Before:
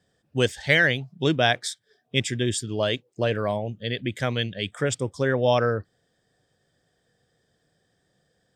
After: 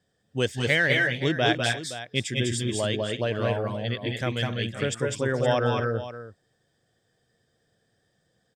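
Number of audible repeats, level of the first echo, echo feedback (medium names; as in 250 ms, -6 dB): 3, -4.5 dB, no regular repeats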